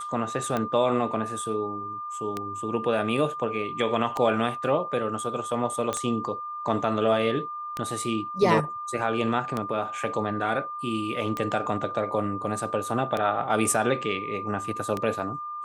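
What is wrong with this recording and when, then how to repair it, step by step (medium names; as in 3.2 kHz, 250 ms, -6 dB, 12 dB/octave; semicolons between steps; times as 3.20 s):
tick 33 1/3 rpm -14 dBFS
whine 1.2 kHz -32 dBFS
5.93 s: pop -14 dBFS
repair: de-click; band-stop 1.2 kHz, Q 30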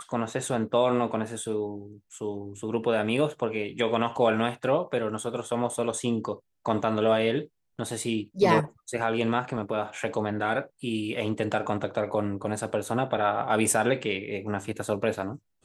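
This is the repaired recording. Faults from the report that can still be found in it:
5.93 s: pop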